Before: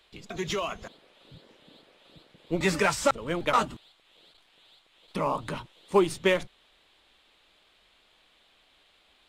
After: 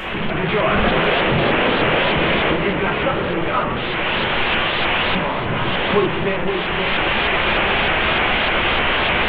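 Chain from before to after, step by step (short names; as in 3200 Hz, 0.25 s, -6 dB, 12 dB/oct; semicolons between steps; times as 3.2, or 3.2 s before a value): delta modulation 16 kbps, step -20.5 dBFS; recorder AGC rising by 12 dB/s; echo with dull and thin repeats by turns 0.521 s, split 890 Hz, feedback 54%, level -6 dB; plate-style reverb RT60 0.91 s, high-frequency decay 0.7×, DRR 0.5 dB; shaped vibrato saw up 3.3 Hz, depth 100 cents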